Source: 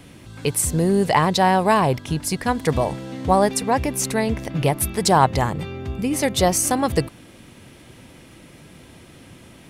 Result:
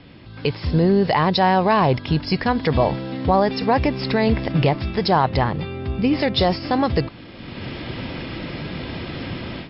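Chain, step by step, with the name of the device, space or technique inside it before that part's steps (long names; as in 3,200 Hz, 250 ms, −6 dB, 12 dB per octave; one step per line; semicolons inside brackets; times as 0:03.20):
low-bitrate web radio (automatic gain control gain up to 16 dB; brickwall limiter −7 dBFS, peak gain reduction 6.5 dB; MP3 32 kbit/s 12,000 Hz)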